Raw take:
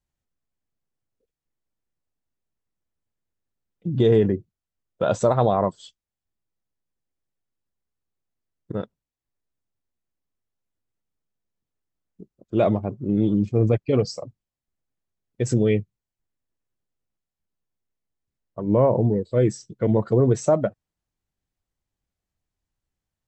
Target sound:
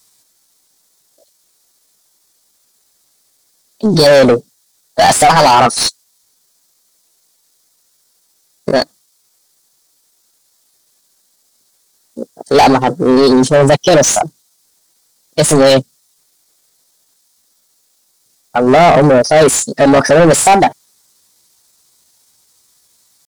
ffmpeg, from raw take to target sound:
-filter_complex "[0:a]aexciter=amount=8.5:drive=4.3:freq=3.1k,asplit=2[a][b];[b]highpass=f=720:p=1,volume=33dB,asoftclip=type=tanh:threshold=-1dB[c];[a][c]amix=inputs=2:normalize=0,lowpass=f=2.5k:p=1,volume=-6dB,asetrate=55563,aresample=44100,atempo=0.793701,volume=2dB"

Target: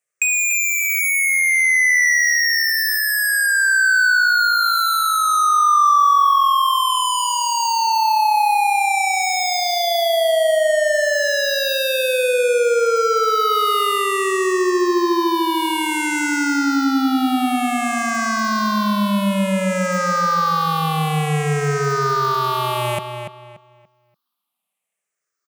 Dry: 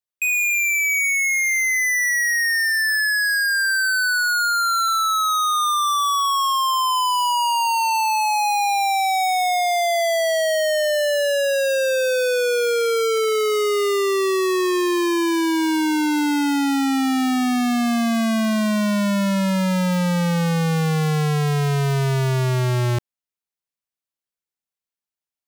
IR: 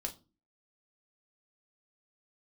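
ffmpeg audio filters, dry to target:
-filter_complex "[0:a]afftfilt=real='re*pow(10,16/40*sin(2*PI*(0.51*log(max(b,1)*sr/1024/100)/log(2)-(-0.56)*(pts-256)/sr)))':imag='im*pow(10,16/40*sin(2*PI*(0.51*log(max(b,1)*sr/1024/100)/log(2)-(-0.56)*(pts-256)/sr)))':win_size=1024:overlap=0.75,highpass=200,equalizer=f=1.2k:t=o:w=0.27:g=13.5,acompressor=threshold=-25dB:ratio=4,asplit=2[a][b];[b]adelay=289,lowpass=f=4k:p=1,volume=-7dB,asplit=2[c][d];[d]adelay=289,lowpass=f=4k:p=1,volume=0.29,asplit=2[e][f];[f]adelay=289,lowpass=f=4k:p=1,volume=0.29,asplit=2[g][h];[h]adelay=289,lowpass=f=4k:p=1,volume=0.29[i];[a][c][e][g][i]amix=inputs=5:normalize=0,volume=7.5dB"

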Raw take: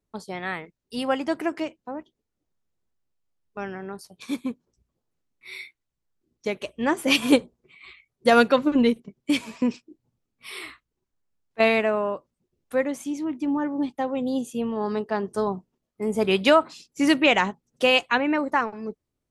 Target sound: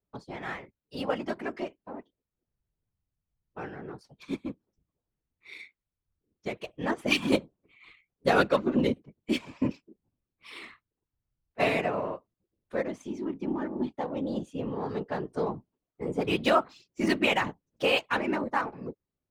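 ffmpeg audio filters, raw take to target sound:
-af "adynamicsmooth=sensitivity=6.5:basefreq=4.1k,afftfilt=real='hypot(re,im)*cos(2*PI*random(0))':imag='hypot(re,im)*sin(2*PI*random(1))':win_size=512:overlap=0.75"

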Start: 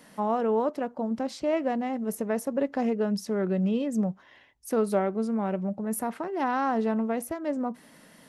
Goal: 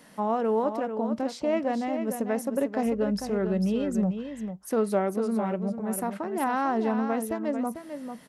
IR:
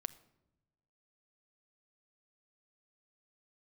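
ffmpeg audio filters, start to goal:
-filter_complex "[0:a]asettb=1/sr,asplit=3[a][b][c];[a]atrim=end=2.864[d];[b]atrim=start=2.86:end=4.06,asetpts=PTS-STARTPTS,afade=t=in:d=0.004:c=qsin,afade=t=out:st=1.196:d=0.004:c=qsin,aeval=exprs='val(0)+0.00355*(sin(2*PI*50*n/s)+sin(2*PI*2*50*n/s)/2+sin(2*PI*3*50*n/s)/3+sin(2*PI*4*50*n/s)/4+sin(2*PI*5*50*n/s)/5)':c=same[e];[c]atrim=start=4.056[f];[d][e]acrossfade=d=0.004:c1=hsin:c2=qsin[g];[g][f]acrossfade=d=0.004:c1=qsin:c2=hsin,aecho=1:1:446:0.398"

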